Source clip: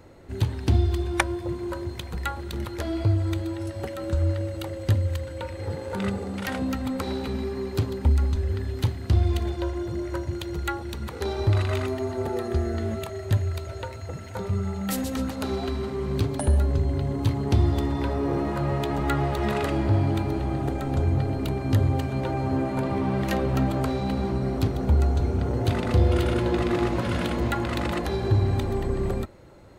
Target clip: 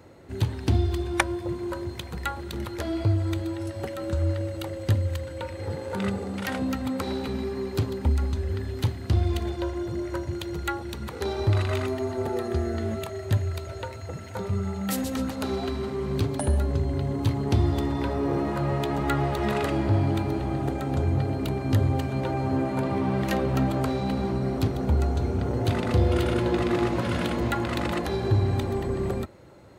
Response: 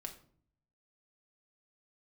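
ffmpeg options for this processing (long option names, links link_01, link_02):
-af "highpass=73"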